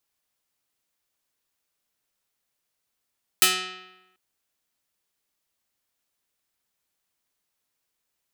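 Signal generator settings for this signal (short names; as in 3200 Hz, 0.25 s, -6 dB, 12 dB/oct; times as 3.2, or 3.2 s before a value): plucked string F#3, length 0.74 s, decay 1.01 s, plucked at 0.34, medium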